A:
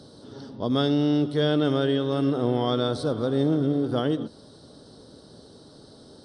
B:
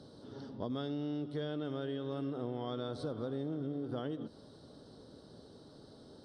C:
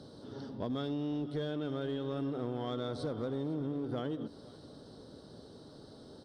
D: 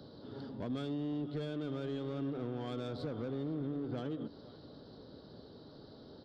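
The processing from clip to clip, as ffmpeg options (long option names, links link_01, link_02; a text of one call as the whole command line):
ffmpeg -i in.wav -af "highshelf=frequency=5400:gain=-9.5,acompressor=threshold=-29dB:ratio=6,volume=-6dB" out.wav
ffmpeg -i in.wav -filter_complex "[0:a]asplit=2[link_01][link_02];[link_02]asoftclip=type=hard:threshold=-36dB,volume=-3.5dB[link_03];[link_01][link_03]amix=inputs=2:normalize=0,aecho=1:1:504:0.0841,volume=-1.5dB" out.wav
ffmpeg -i in.wav -filter_complex "[0:a]aresample=11025,aresample=44100,acrossover=split=330[link_01][link_02];[link_02]asoftclip=type=tanh:threshold=-38.5dB[link_03];[link_01][link_03]amix=inputs=2:normalize=0,volume=-1dB" out.wav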